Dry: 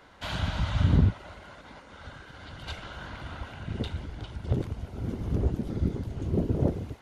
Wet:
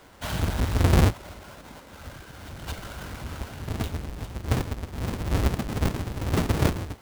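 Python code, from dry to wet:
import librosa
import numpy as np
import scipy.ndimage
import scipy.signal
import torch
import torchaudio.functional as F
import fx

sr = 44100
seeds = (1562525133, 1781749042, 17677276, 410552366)

y = fx.halfwave_hold(x, sr)
y = F.gain(torch.from_numpy(y), -1.5).numpy()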